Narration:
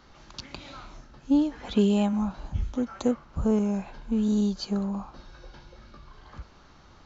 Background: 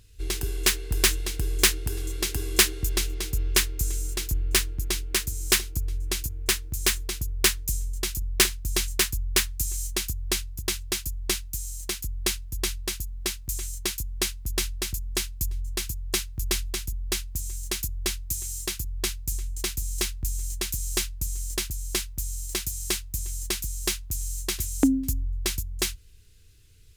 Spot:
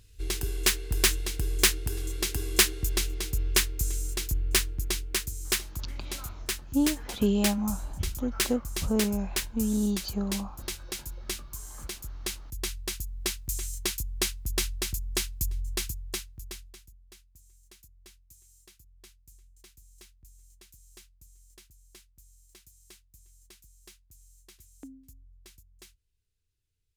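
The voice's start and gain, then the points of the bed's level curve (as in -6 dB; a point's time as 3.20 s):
5.45 s, -3.0 dB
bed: 4.85 s -2 dB
5.82 s -8 dB
12.24 s -8 dB
13.20 s -1.5 dB
15.83 s -1.5 dB
17.06 s -26 dB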